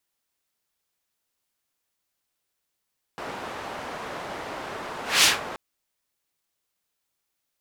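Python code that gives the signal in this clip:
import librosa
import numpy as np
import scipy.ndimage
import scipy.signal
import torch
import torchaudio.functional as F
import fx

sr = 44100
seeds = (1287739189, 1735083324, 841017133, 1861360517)

y = fx.whoosh(sr, seeds[0], length_s=2.38, peak_s=2.06, rise_s=0.22, fall_s=0.19, ends_hz=870.0, peak_hz=4200.0, q=0.81, swell_db=19)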